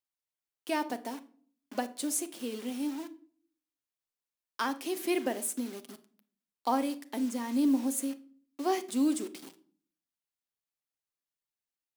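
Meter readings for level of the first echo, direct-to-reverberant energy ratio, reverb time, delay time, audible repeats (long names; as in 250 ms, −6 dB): no echo audible, 10.0 dB, 0.50 s, no echo audible, no echo audible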